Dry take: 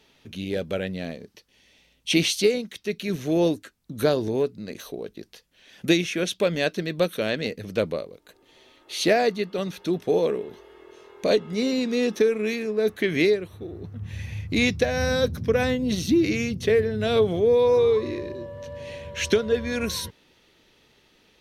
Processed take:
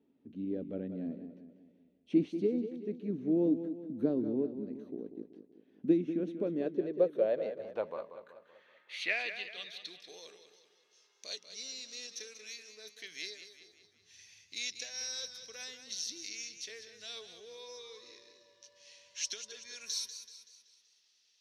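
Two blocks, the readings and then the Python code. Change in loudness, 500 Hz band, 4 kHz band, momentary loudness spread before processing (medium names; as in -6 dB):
-12.0 dB, -14.5 dB, -11.0 dB, 16 LU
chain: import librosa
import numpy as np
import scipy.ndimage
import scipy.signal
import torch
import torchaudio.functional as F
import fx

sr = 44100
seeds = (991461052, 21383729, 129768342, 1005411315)

y = fx.filter_sweep_bandpass(x, sr, from_hz=270.0, to_hz=5500.0, start_s=6.35, end_s=10.2, q=3.7)
y = fx.echo_warbled(y, sr, ms=190, feedback_pct=48, rate_hz=2.8, cents=63, wet_db=-10.5)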